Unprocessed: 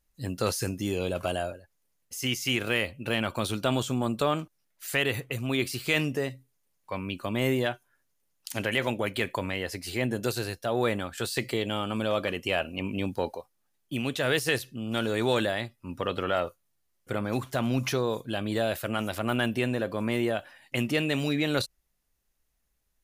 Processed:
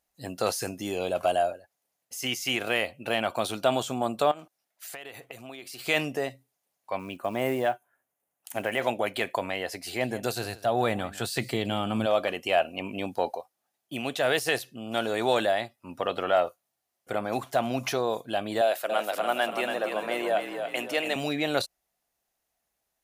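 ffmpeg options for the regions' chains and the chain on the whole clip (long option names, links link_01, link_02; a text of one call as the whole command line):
ffmpeg -i in.wav -filter_complex "[0:a]asettb=1/sr,asplit=3[link_01][link_02][link_03];[link_01]atrim=end=4.314[link_04];[link_02]atrim=start=4.31:end=5.79,asetpts=PTS-STARTPTS,afade=type=in:duration=0.004:curve=qsin,afade=type=out:start_time=1.476:duration=0.004:curve=qsin,lowshelf=frequency=130:gain=-9,acompressor=threshold=-37dB:ratio=12:attack=3.2:release=140:knee=1:detection=peak[link_05];[link_03]atrim=start=5.786[link_06];[link_04][link_05]acrossfade=duration=0.004:curve1=hsin:curve2=qsin[link_07];[link_07][link_06]acrossfade=duration=0.004:curve1=qsin:curve2=hsin,asettb=1/sr,asplit=3[link_08][link_09][link_10];[link_08]atrim=end=6.994[link_11];[link_09]atrim=start=6.99:end=8.81,asetpts=PTS-STARTPTS,afade=type=in:duration=0.004:curve=qsin,afade=type=out:start_time=1.816:duration=0.004:curve=qsin,equalizer=frequency=4700:width_type=o:width=1:gain=-14,acrusher=bits=7:mode=log:mix=0:aa=0.000001[link_12];[link_10]atrim=start=8.806[link_13];[link_11][link_12]acrossfade=duration=0.004:curve1=hsin:curve2=qsin[link_14];[link_14][link_13]acrossfade=duration=0.004:curve1=qsin:curve2=hsin,asettb=1/sr,asplit=3[link_15][link_16][link_17];[link_15]atrim=end=9.854[link_18];[link_16]atrim=start=9.85:end=12.06,asetpts=PTS-STARTPTS,afade=type=in:duration=0.004:curve=qsin,afade=type=out:start_time=2.206:duration=0.004:curve=qsin,asubboost=boost=7:cutoff=240,aecho=1:1:159:0.133,atrim=end_sample=97461[link_19];[link_17]atrim=start=12.056[link_20];[link_18][link_19]acrossfade=duration=0.004:curve1=hsin:curve2=qsin[link_21];[link_21][link_20]acrossfade=duration=0.004:curve1=qsin:curve2=hsin,asettb=1/sr,asplit=3[link_22][link_23][link_24];[link_22]atrim=end=18.614[link_25];[link_23]atrim=start=18.61:end=21.16,asetpts=PTS-STARTPTS,afade=type=in:duration=0.004:curve=qsin,afade=type=out:start_time=2.546:duration=0.004:curve=qsin,highpass=380,asplit=7[link_26][link_27][link_28][link_29][link_30][link_31][link_32];[link_27]adelay=283,afreqshift=-32,volume=-6dB[link_33];[link_28]adelay=566,afreqshift=-64,volume=-12.6dB[link_34];[link_29]adelay=849,afreqshift=-96,volume=-19.1dB[link_35];[link_30]adelay=1132,afreqshift=-128,volume=-25.7dB[link_36];[link_31]adelay=1415,afreqshift=-160,volume=-32.2dB[link_37];[link_32]adelay=1698,afreqshift=-192,volume=-38.8dB[link_38];[link_26][link_33][link_34][link_35][link_36][link_37][link_38]amix=inputs=7:normalize=0,atrim=end_sample=112455[link_39];[link_24]atrim=start=21.156[link_40];[link_25][link_39]acrossfade=duration=0.004:curve1=hsin:curve2=qsin[link_41];[link_41][link_40]acrossfade=duration=0.004:curve1=qsin:curve2=hsin,highpass=frequency=300:poles=1,equalizer=frequency=710:width_type=o:width=0.49:gain=10.5" out.wav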